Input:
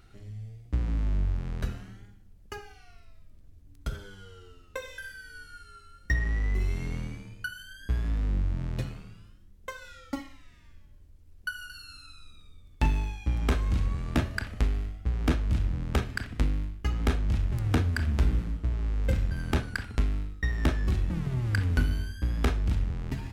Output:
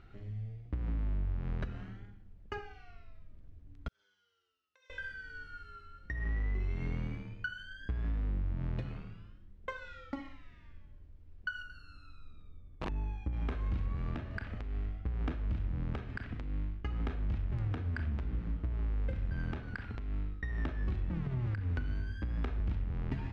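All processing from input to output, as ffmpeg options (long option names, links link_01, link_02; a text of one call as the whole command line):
ffmpeg -i in.wav -filter_complex "[0:a]asettb=1/sr,asplit=3[link_01][link_02][link_03];[link_01]atrim=end=3.884[link_04];[link_02]atrim=start=3.88:end=4.9,asetpts=PTS-STARTPTS,afade=type=in:duration=0.004:curve=qsin,afade=type=out:start_time=1.016:duration=0.004:curve=qsin,aemphasis=mode=reproduction:type=50fm,acompressor=threshold=-38dB:ratio=6:attack=3.2:release=140:knee=1:detection=peak,bandpass=frequency=6000:width_type=q:width=3.2[link_05];[link_03]atrim=start=4.896[link_06];[link_04][link_05]acrossfade=duration=0.004:curve1=hsin:curve2=qsin[link_07];[link_07][link_06]acrossfade=duration=0.004:curve1=qsin:curve2=hsin,asettb=1/sr,asplit=3[link_08][link_09][link_10];[link_08]atrim=end=11.624[link_11];[link_09]atrim=start=11.62:end=13.33,asetpts=PTS-STARTPTS,afade=type=in:duration=0.004:curve=qsin,afade=type=out:start_time=1.706:duration=0.004:curve=qsin,equalizer=frequency=3400:width=0.48:gain=-9.5,aeval=exprs='(mod(6.68*val(0)+1,2)-1)/6.68':channel_layout=same[link_12];[link_10]atrim=start=13.326[link_13];[link_11][link_12]acrossfade=duration=0.004:curve1=hsin:curve2=qsin[link_14];[link_14][link_13]acrossfade=duration=0.004:curve1=qsin:curve2=hsin,asettb=1/sr,asplit=3[link_15][link_16][link_17];[link_15]atrim=end=21.464[link_18];[link_16]atrim=start=21.46:end=22.6,asetpts=PTS-STARTPTS,afade=type=in:duration=0.004:curve=qsin,afade=type=out:start_time=1.136:duration=0.004:curve=qsin,bandreject=frequency=3100:width=26,acrossover=split=94|700[link_19][link_20][link_21];[link_19]acompressor=threshold=-25dB:ratio=4[link_22];[link_20]acompressor=threshold=-33dB:ratio=4[link_23];[link_21]acompressor=threshold=-36dB:ratio=4[link_24];[link_22][link_23][link_24]amix=inputs=3:normalize=0[link_25];[link_17]atrim=start=22.596[link_26];[link_18][link_25]acrossfade=duration=0.004:curve1=hsin:curve2=qsin[link_27];[link_27][link_26]acrossfade=duration=0.004:curve1=qsin:curve2=hsin,lowpass=2700,acompressor=threshold=-30dB:ratio=6,alimiter=level_in=2dB:limit=-24dB:level=0:latency=1:release=152,volume=-2dB" out.wav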